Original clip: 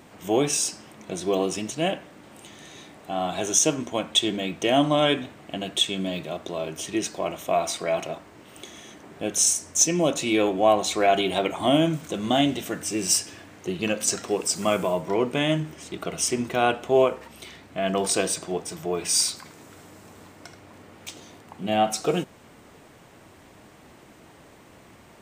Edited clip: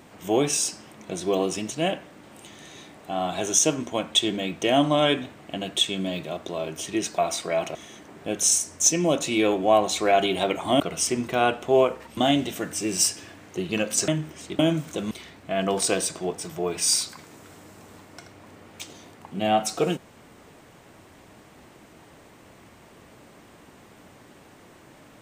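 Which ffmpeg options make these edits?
-filter_complex "[0:a]asplit=8[s0][s1][s2][s3][s4][s5][s6][s7];[s0]atrim=end=7.182[s8];[s1]atrim=start=7.538:end=8.112[s9];[s2]atrim=start=8.698:end=11.752[s10];[s3]atrim=start=16.008:end=17.382[s11];[s4]atrim=start=12.268:end=14.182[s12];[s5]atrim=start=15.498:end=16.012[s13];[s6]atrim=start=11.748:end=12.272[s14];[s7]atrim=start=17.378[s15];[s8][s9]acrossfade=d=0.004:c1=hsin:c2=hsin[s16];[s16][s10]acrossfade=d=0.004:c1=hsin:c2=hsin[s17];[s17][s11]acrossfade=d=0.004:c1=hsin:c2=hsin[s18];[s18][s12]acrossfade=d=0.004:c1=hsin:c2=hsin[s19];[s19][s13]acrossfade=d=0.004:c1=hsin:c2=hsin[s20];[s20][s14]acrossfade=d=0.004:c1=hsin:c2=hsin[s21];[s21][s15]acrossfade=d=0.004:c1=hsin:c2=hsin"

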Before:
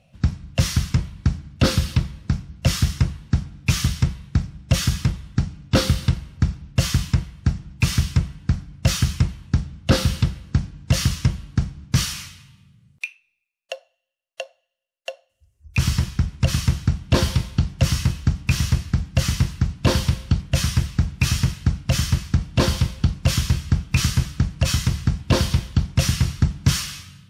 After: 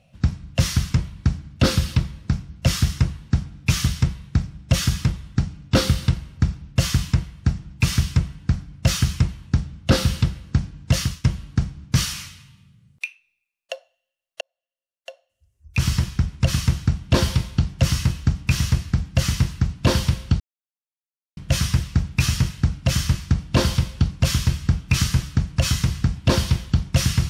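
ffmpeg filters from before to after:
-filter_complex "[0:a]asplit=4[s0][s1][s2][s3];[s0]atrim=end=11.24,asetpts=PTS-STARTPTS,afade=t=out:st=10.94:d=0.3:silence=0.149624[s4];[s1]atrim=start=11.24:end=14.41,asetpts=PTS-STARTPTS,afade=t=in:d=0.004:c=hsin:silence=0.149624,afade=t=out:st=3.166:d=0.004:c=hsin[s5];[s2]atrim=start=14.41:end=20.4,asetpts=PTS-STARTPTS,afade=t=in:d=1.54,afade=t=out:st=5.986:d=0.004:c=hsin,apad=pad_dur=0.97[s6];[s3]atrim=start=20.4,asetpts=PTS-STARTPTS,afade=t=in:d=0.004:c=hsin[s7];[s4][s5][s6][s7]concat=n=4:v=0:a=1"

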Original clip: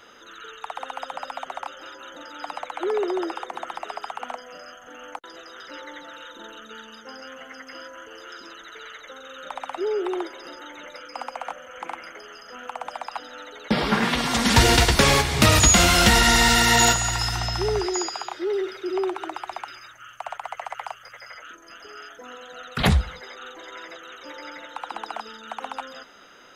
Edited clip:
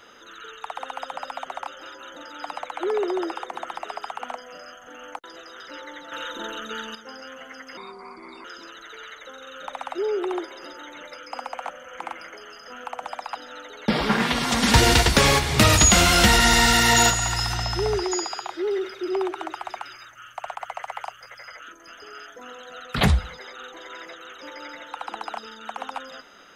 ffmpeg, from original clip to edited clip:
-filter_complex "[0:a]asplit=5[s0][s1][s2][s3][s4];[s0]atrim=end=6.122[s5];[s1]atrim=start=6.118:end=6.952,asetpts=PTS-STARTPTS,volume=2.51[s6];[s2]atrim=start=6.948:end=7.774[s7];[s3]atrim=start=7.77:end=8.27,asetpts=PTS-STARTPTS,asetrate=32634,aresample=44100,atrim=end_sample=29797,asetpts=PTS-STARTPTS[s8];[s4]atrim=start=8.266[s9];[s5][s6]acrossfade=d=0.004:c1=hsin:c2=hsin[s10];[s10][s7]acrossfade=d=0.004:c1=hsin:c2=hsin[s11];[s11][s8]acrossfade=d=0.004:c1=hsin:c2=hsin[s12];[s12][s9]acrossfade=d=0.004:c1=hsin:c2=hsin"

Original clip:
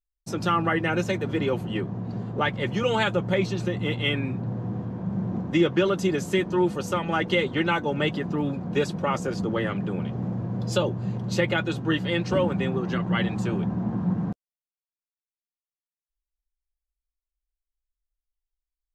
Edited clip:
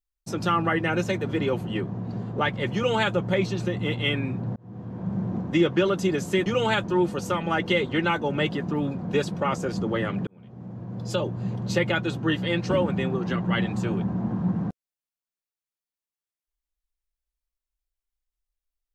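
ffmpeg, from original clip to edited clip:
-filter_complex "[0:a]asplit=5[s0][s1][s2][s3][s4];[s0]atrim=end=4.56,asetpts=PTS-STARTPTS,afade=t=out:st=4.556:d=0.004:c=hsin[s5];[s1]atrim=start=4.56:end=6.462,asetpts=PTS-STARTPTS,afade=t=in:d=0.51[s6];[s2]atrim=start=2.748:end=3.132[s7];[s3]atrim=start=6.458:end=9.89,asetpts=PTS-STARTPTS,afade=t=out:st=3.428:d=0.004:c=hsin[s8];[s4]atrim=start=9.89,asetpts=PTS-STARTPTS,afade=t=in:d=1.24[s9];[s5][s6]concat=n=2:v=0:a=1[s10];[s10][s7]acrossfade=d=0.004:c1=hsin:c2=hsin[s11];[s8][s9]concat=n=2:v=0:a=1[s12];[s11][s12]acrossfade=d=0.004:c1=hsin:c2=hsin"

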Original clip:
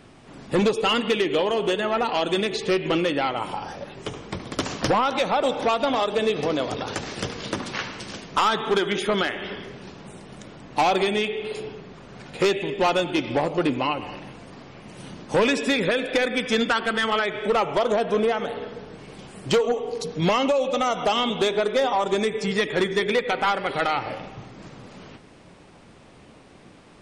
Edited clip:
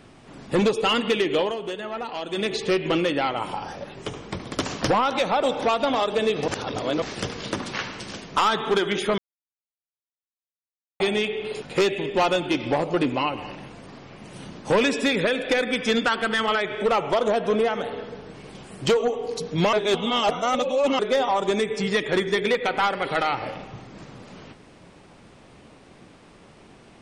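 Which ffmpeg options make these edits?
-filter_complex "[0:a]asplit=10[s0][s1][s2][s3][s4][s5][s6][s7][s8][s9];[s0]atrim=end=1.57,asetpts=PTS-STARTPTS,afade=t=out:st=1.42:d=0.15:silence=0.398107[s10];[s1]atrim=start=1.57:end=2.31,asetpts=PTS-STARTPTS,volume=0.398[s11];[s2]atrim=start=2.31:end=6.482,asetpts=PTS-STARTPTS,afade=t=in:d=0.15:silence=0.398107[s12];[s3]atrim=start=6.478:end=7.022,asetpts=PTS-STARTPTS,areverse[s13];[s4]atrim=start=7.018:end=9.18,asetpts=PTS-STARTPTS,afade=t=out:st=2.158:d=0.004:c=hsin[s14];[s5]atrim=start=9.18:end=11,asetpts=PTS-STARTPTS,volume=0[s15];[s6]atrim=start=11:end=11.622,asetpts=PTS-STARTPTS,afade=t=in:d=0.004:c=hsin[s16];[s7]atrim=start=12.258:end=20.372[s17];[s8]atrim=start=20.368:end=21.632,asetpts=PTS-STARTPTS,areverse[s18];[s9]atrim=start=21.628[s19];[s10][s11][s12]concat=n=3:v=0:a=1[s20];[s20][s13]acrossfade=d=0.004:c1=hsin:c2=hsin[s21];[s14][s15][s16]concat=n=3:v=0:a=1[s22];[s21][s22]acrossfade=d=0.004:c1=hsin:c2=hsin[s23];[s23][s17]acrossfade=d=0.004:c1=hsin:c2=hsin[s24];[s24][s18]acrossfade=d=0.004:c1=hsin:c2=hsin[s25];[s25][s19]acrossfade=d=0.004:c1=hsin:c2=hsin"

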